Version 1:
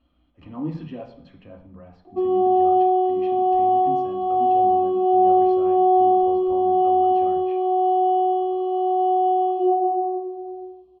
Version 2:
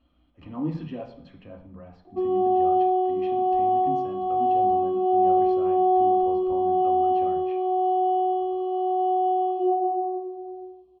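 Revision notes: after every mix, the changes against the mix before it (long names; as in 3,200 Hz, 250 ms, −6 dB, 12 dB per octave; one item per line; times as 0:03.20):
background −3.5 dB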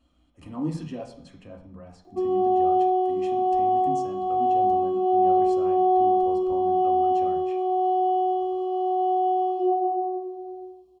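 master: remove low-pass filter 3,700 Hz 24 dB per octave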